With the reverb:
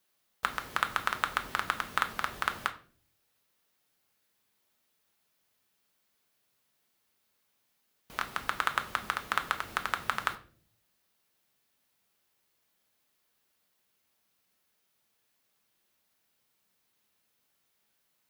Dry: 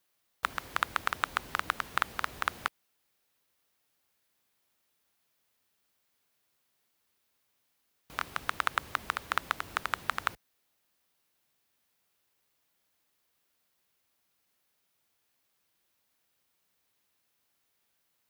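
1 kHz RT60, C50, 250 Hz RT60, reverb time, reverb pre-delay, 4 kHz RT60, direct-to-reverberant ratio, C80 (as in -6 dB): 0.35 s, 14.5 dB, 0.80 s, 0.45 s, 5 ms, 0.35 s, 6.5 dB, 18.5 dB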